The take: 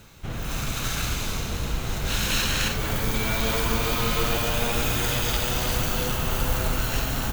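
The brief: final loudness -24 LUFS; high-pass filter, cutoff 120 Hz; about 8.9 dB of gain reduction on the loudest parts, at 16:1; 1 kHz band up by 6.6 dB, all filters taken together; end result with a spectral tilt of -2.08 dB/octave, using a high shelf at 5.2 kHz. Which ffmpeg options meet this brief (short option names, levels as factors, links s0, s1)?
-af "highpass=120,equalizer=f=1000:t=o:g=8,highshelf=f=5200:g=7.5,acompressor=threshold=0.0501:ratio=16,volume=1.68"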